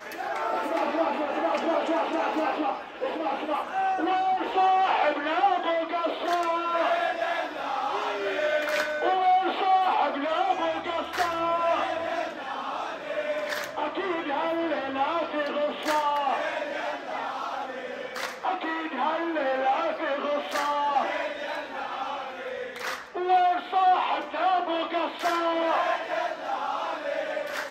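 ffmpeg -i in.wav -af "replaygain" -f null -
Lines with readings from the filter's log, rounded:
track_gain = +7.8 dB
track_peak = 0.187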